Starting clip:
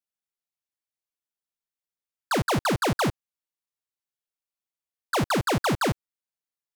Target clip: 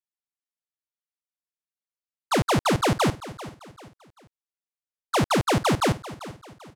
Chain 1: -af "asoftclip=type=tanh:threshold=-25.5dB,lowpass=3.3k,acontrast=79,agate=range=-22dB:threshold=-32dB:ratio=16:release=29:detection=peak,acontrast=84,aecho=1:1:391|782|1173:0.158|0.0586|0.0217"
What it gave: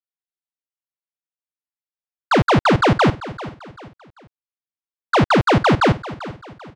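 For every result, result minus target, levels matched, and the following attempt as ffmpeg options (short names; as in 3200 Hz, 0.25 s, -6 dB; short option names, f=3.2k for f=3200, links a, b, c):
8000 Hz band -12.5 dB; soft clip: distortion -8 dB
-af "asoftclip=type=tanh:threshold=-25.5dB,lowpass=11k,acontrast=79,agate=range=-22dB:threshold=-32dB:ratio=16:release=29:detection=peak,acontrast=84,aecho=1:1:391|782|1173:0.158|0.0586|0.0217"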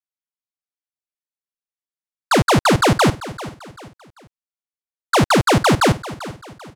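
soft clip: distortion -8 dB
-af "asoftclip=type=tanh:threshold=-34dB,lowpass=11k,acontrast=79,agate=range=-22dB:threshold=-32dB:ratio=16:release=29:detection=peak,acontrast=84,aecho=1:1:391|782|1173:0.158|0.0586|0.0217"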